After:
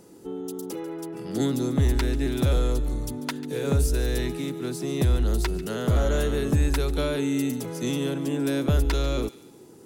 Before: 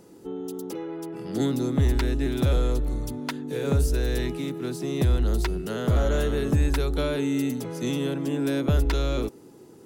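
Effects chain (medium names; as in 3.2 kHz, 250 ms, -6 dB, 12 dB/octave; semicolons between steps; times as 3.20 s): peaking EQ 9.6 kHz +4 dB 1.5 oct; on a send: feedback echo behind a high-pass 143 ms, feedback 37%, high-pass 1.8 kHz, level -15 dB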